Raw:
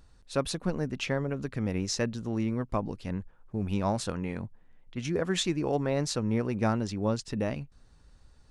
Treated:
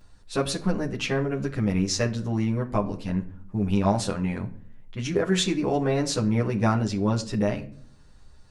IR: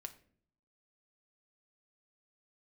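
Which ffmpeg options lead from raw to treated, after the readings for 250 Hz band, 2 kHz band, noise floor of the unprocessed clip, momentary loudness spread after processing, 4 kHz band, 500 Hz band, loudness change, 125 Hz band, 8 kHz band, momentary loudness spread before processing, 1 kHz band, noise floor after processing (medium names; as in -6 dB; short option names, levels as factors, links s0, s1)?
+5.5 dB, +4.5 dB, -58 dBFS, 8 LU, +4.5 dB, +4.5 dB, +5.0 dB, +6.0 dB, +4.5 dB, 9 LU, +5.0 dB, -51 dBFS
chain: -filter_complex "[0:a]asplit=2[s0][s1];[1:a]atrim=start_sample=2205,adelay=10[s2];[s1][s2]afir=irnorm=-1:irlink=0,volume=2.51[s3];[s0][s3]amix=inputs=2:normalize=0"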